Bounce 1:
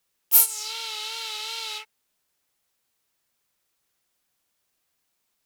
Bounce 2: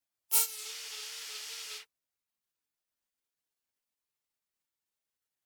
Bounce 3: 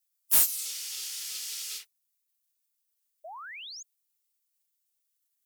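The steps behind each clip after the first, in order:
spectral gate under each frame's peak -10 dB weak; trim -4 dB
pre-emphasis filter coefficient 0.9; saturation -25 dBFS, distortion -7 dB; painted sound rise, 3.24–3.83 s, 600–7000 Hz -51 dBFS; trim +8.5 dB

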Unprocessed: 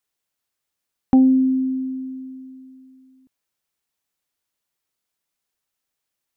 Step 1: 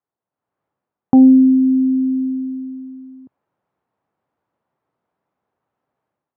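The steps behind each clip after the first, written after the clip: Chebyshev band-pass 110–940 Hz, order 2; level rider gain up to 13.5 dB; loudness maximiser +4.5 dB; trim -2 dB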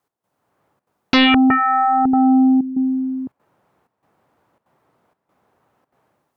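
trance gate "x..xxxxxxx.xxxxx" 190 bpm -12 dB; in parallel at -4 dB: sine folder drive 19 dB, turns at -2.5 dBFS; on the sum: trim -5.5 dB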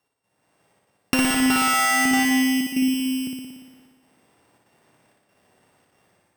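sorted samples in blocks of 16 samples; compression 6:1, threshold -19 dBFS, peak gain reduction 9.5 dB; on a send: flutter echo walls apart 10 m, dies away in 1.3 s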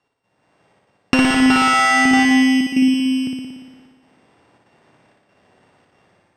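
distance through air 98 m; trim +6.5 dB

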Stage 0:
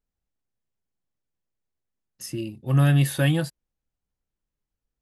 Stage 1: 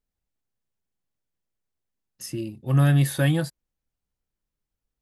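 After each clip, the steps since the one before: dynamic bell 2.8 kHz, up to -6 dB, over -50 dBFS, Q 5.3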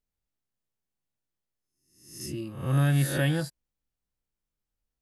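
reverse spectral sustain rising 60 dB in 0.62 s; trim -5 dB

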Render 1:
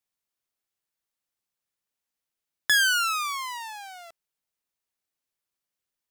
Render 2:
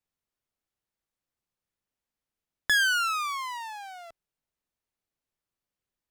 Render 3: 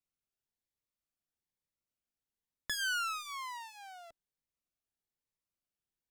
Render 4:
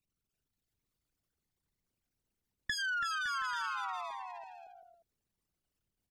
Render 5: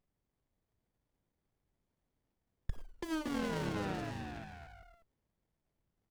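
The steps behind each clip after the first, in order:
tilt EQ -2 dB/octave
in parallel at -11 dB: hard clipper -29.5 dBFS, distortion -6 dB; on the sum: Shepard-style phaser rising 1.1 Hz; trim -8 dB
resonances exaggerated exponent 3; bouncing-ball echo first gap 330 ms, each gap 0.7×, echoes 5; compression, threshold -38 dBFS, peak gain reduction 7 dB; trim +5.5 dB
sliding maximum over 33 samples; trim +5 dB

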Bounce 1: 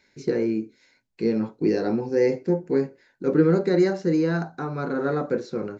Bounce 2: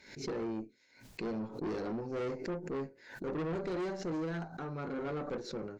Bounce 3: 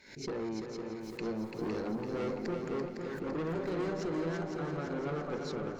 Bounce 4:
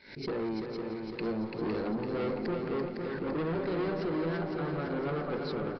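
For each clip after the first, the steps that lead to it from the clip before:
valve stage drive 25 dB, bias 0.45; swell ahead of each attack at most 95 dB/s; trim -8 dB
multi-head delay 169 ms, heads second and third, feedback 63%, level -6.5 dB
waveshaping leveller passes 1; resampled via 11.025 kHz

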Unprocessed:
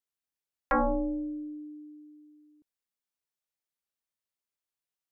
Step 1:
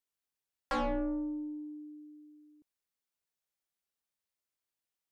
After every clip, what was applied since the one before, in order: saturation -29.5 dBFS, distortion -10 dB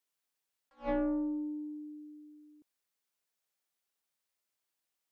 bass shelf 160 Hz -9 dB; attacks held to a fixed rise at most 290 dB/s; trim +4 dB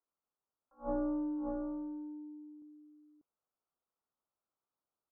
in parallel at -3.5 dB: saturation -38.5 dBFS, distortion -8 dB; on the sum: steep low-pass 1.4 kHz 72 dB/octave; delay 591 ms -5 dB; trim -4.5 dB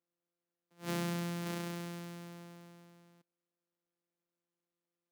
sorted samples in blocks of 256 samples; high-pass 160 Hz 24 dB/octave; dynamic bell 670 Hz, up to -4 dB, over -51 dBFS, Q 0.72; trim +1 dB

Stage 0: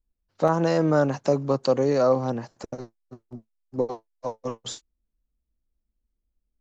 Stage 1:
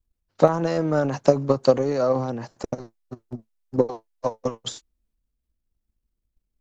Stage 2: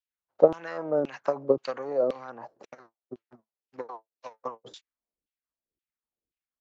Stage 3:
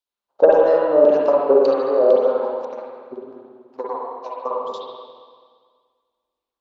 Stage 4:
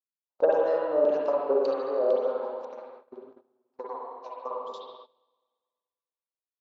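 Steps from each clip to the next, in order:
transient shaper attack +11 dB, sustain +7 dB; trim -3.5 dB
LFO band-pass saw down 1.9 Hz 330–3200 Hz; trim +1.5 dB
saturation -10.5 dBFS, distortion -13 dB; graphic EQ 125/250/500/1000/2000/4000 Hz -8/+4/+7/+9/-6/+8 dB; spring tank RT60 1.8 s, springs 48/53/58 ms, chirp 25 ms, DRR -4.5 dB; trim -1 dB
gate -37 dBFS, range -17 dB; bass shelf 320 Hz -5.5 dB; trim -8.5 dB

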